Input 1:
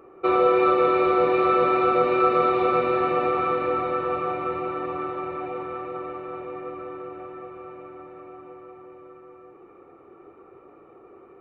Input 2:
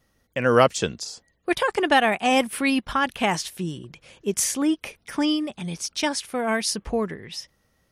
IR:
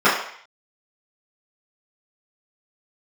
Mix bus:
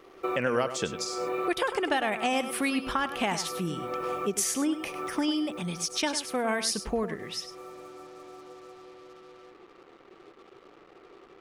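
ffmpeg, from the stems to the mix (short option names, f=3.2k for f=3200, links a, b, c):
-filter_complex "[0:a]acompressor=threshold=-23dB:ratio=6,acrusher=bits=7:mix=0:aa=0.5,volume=-4dB[a];[1:a]acompressor=threshold=-23dB:ratio=6,volume=-1dB,asplit=3[b][c][d];[c]volume=-11dB[e];[d]apad=whole_len=503180[f];[a][f]sidechaincompress=threshold=-39dB:ratio=10:attack=11:release=220[g];[e]aecho=0:1:101:1[h];[g][b][h]amix=inputs=3:normalize=0,equalizer=f=87:t=o:w=1.4:g=-5.5"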